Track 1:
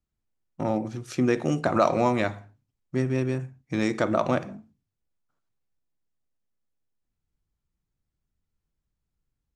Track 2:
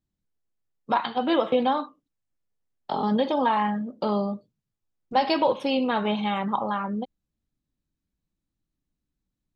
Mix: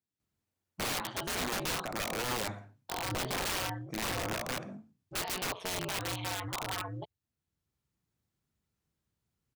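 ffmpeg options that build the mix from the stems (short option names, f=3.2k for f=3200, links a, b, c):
-filter_complex "[0:a]alimiter=limit=-14dB:level=0:latency=1:release=25,adelay=200,volume=2.5dB[a];[1:a]lowshelf=f=490:g=-9,aeval=exprs='val(0)*sin(2*PI*92*n/s)':c=same,asubboost=boost=5:cutoff=92,volume=-2dB,asplit=2[b][c];[c]apad=whole_len=430100[d];[a][d]sidechaincompress=threshold=-43dB:ratio=6:attack=27:release=1080[e];[e][b]amix=inputs=2:normalize=0,highpass=96,aeval=exprs='(mod(25.1*val(0)+1,2)-1)/25.1':c=same"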